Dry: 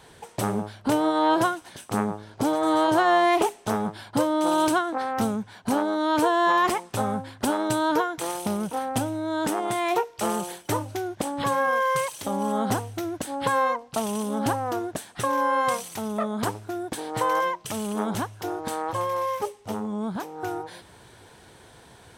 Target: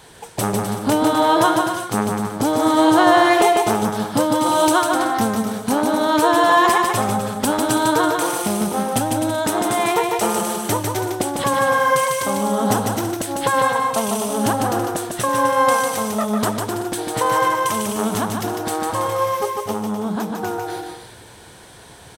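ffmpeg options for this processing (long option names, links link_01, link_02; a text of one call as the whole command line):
ffmpeg -i in.wav -af "highshelf=frequency=4400:gain=5,aecho=1:1:150|255|328.5|380|416:0.631|0.398|0.251|0.158|0.1,volume=4.5dB" out.wav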